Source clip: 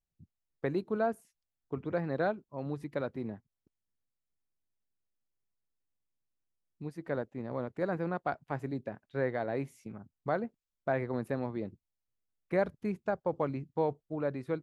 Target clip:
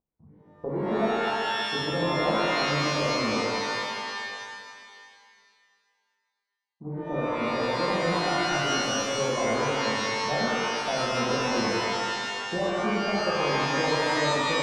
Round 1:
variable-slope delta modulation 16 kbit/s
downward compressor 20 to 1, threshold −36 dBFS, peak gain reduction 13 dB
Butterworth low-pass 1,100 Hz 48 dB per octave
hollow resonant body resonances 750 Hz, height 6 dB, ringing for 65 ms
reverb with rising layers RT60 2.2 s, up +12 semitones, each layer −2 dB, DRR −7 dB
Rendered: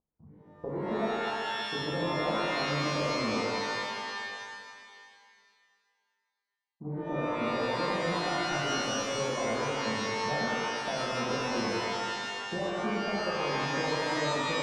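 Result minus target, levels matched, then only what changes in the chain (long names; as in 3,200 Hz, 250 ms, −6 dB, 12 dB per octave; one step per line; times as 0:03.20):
downward compressor: peak gain reduction +6 dB
change: downward compressor 20 to 1, threshold −29.5 dBFS, peak gain reduction 7 dB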